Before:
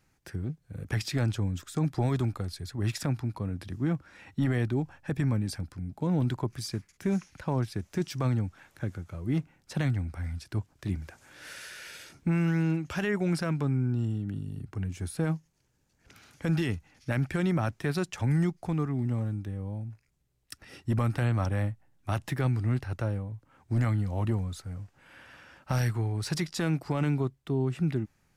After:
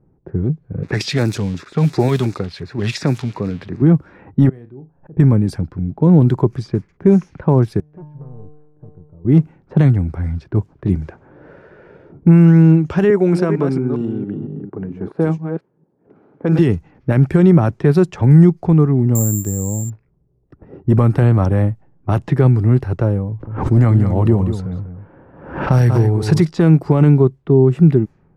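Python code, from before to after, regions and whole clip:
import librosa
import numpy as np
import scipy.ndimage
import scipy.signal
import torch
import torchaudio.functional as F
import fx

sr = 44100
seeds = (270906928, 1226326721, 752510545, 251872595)

y = fx.chain(x, sr, fx.crossing_spikes(level_db=-31.0),
    fx.weighting(curve='D'),
    fx.filter_lfo_notch(shape='square', hz=2.8, low_hz=330.0, high_hz=3100.0, q=2.2), at=(0.83, 3.82))
y = fx.chain(y, sr, fx.peak_eq(hz=7000.0, db=-5.0, octaves=0.64),
    fx.room_flutter(wall_m=6.5, rt60_s=0.21),
    fx.gate_flip(shuts_db=-38.0, range_db=-25), at=(4.49, 5.17))
y = fx.chain(y, sr, fx.lowpass(hz=1100.0, slope=6),
    fx.clip_hard(threshold_db=-32.0),
    fx.comb_fb(f0_hz=150.0, decay_s=1.2, harmonics='all', damping=0.0, mix_pct=90), at=(7.8, 9.25))
y = fx.chain(y, sr, fx.reverse_delay(ms=228, wet_db=-7.0),
    fx.highpass(hz=250.0, slope=12), at=(13.1, 16.59))
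y = fx.chain(y, sr, fx.crossing_spikes(level_db=-37.0),
    fx.high_shelf(hz=3800.0, db=-10.5),
    fx.resample_bad(factor=6, down='filtered', up='zero_stuff'), at=(19.15, 19.9))
y = fx.chain(y, sr, fx.echo_single(ms=192, db=-9.0),
    fx.pre_swell(db_per_s=66.0), at=(23.28, 26.45))
y = fx.tilt_shelf(y, sr, db=5.5, hz=1400.0)
y = fx.env_lowpass(y, sr, base_hz=640.0, full_db=-22.0)
y = fx.graphic_eq_15(y, sr, hz=(160, 400, 1000), db=(6, 8, 3))
y = y * librosa.db_to_amplitude(6.5)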